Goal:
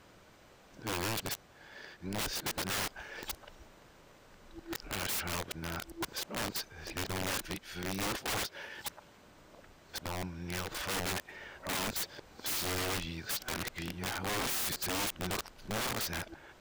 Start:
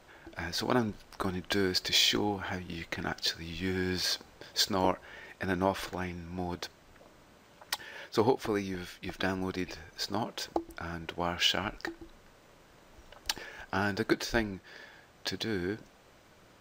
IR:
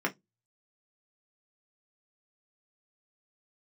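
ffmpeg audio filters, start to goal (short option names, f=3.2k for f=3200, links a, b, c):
-af "areverse,aeval=exprs='(mod(28.2*val(0)+1,2)-1)/28.2':c=same"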